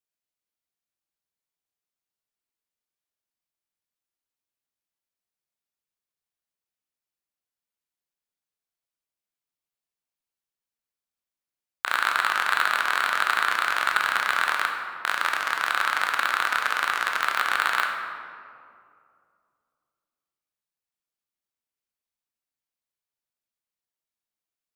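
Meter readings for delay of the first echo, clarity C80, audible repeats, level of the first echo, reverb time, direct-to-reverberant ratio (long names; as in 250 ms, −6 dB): no echo audible, 5.0 dB, no echo audible, no echo audible, 2.3 s, 1.5 dB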